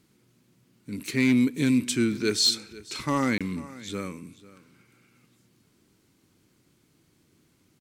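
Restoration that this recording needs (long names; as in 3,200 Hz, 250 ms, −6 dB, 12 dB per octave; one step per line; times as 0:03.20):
clipped peaks rebuilt −14.5 dBFS
repair the gap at 0:03.38, 26 ms
echo removal 494 ms −19 dB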